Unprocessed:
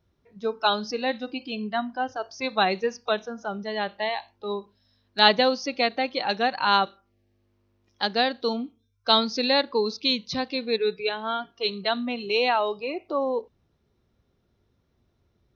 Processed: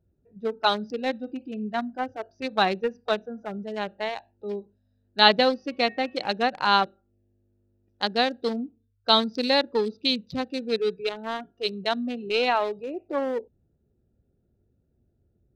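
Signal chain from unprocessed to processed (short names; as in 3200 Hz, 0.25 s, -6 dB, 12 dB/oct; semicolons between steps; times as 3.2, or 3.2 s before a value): Wiener smoothing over 41 samples; 5.49–6.29 de-hum 371.8 Hz, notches 9; gain +1 dB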